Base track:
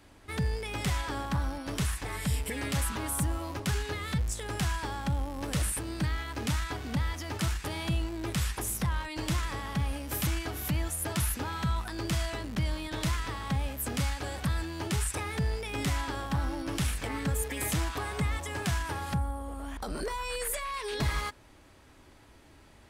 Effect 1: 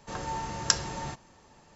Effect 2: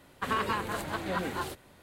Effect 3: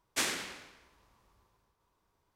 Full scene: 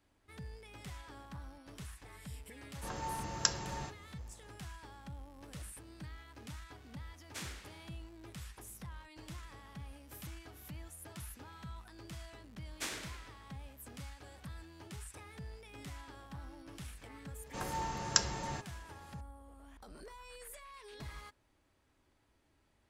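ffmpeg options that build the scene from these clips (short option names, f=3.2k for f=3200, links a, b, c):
-filter_complex "[1:a]asplit=2[a][b];[3:a]asplit=2[c][d];[0:a]volume=-17.5dB[e];[a]atrim=end=1.75,asetpts=PTS-STARTPTS,volume=-6dB,afade=t=in:d=0.004:c=hsin,afade=t=out:st=1.746:d=0.004:c=hsin,adelay=2750[f];[c]atrim=end=2.35,asetpts=PTS-STARTPTS,volume=-14dB,afade=t=in:d=0.004:c=hsin,afade=t=out:st=2.346:d=0.004:c=hsin,adelay=7180[g];[d]atrim=end=2.35,asetpts=PTS-STARTPTS,volume=-9dB,afade=t=in:d=0.004:c=hsin,afade=t=out:st=2.346:d=0.004:c=hsin,adelay=12640[h];[b]atrim=end=1.75,asetpts=PTS-STARTPTS,volume=-4dB,afade=t=in:d=0.004:c=hsin,afade=t=out:st=1.746:d=0.004:c=hsin,adelay=17460[i];[e][f][g][h][i]amix=inputs=5:normalize=0"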